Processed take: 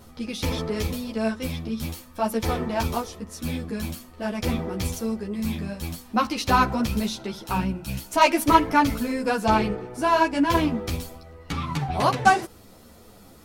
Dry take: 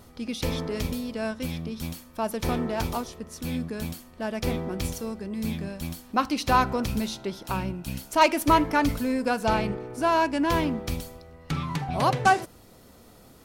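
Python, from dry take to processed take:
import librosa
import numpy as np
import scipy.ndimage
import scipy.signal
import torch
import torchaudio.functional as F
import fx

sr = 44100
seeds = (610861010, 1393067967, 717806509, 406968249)

y = fx.ensemble(x, sr)
y = F.gain(torch.from_numpy(y), 5.5).numpy()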